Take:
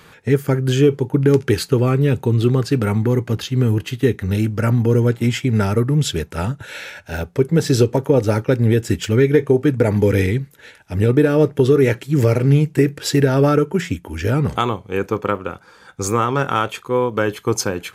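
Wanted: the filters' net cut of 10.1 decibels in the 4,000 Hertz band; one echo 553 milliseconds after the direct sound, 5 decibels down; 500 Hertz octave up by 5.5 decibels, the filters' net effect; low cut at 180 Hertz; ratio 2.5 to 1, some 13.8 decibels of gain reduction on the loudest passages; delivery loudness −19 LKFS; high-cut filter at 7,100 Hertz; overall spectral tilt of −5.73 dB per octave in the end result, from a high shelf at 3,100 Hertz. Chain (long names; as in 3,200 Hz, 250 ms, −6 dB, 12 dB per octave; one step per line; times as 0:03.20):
high-pass filter 180 Hz
low-pass filter 7,100 Hz
parametric band 500 Hz +7 dB
high-shelf EQ 3,100 Hz −8 dB
parametric band 4,000 Hz −7 dB
downward compressor 2.5 to 1, threshold −27 dBFS
single-tap delay 553 ms −5 dB
level +7 dB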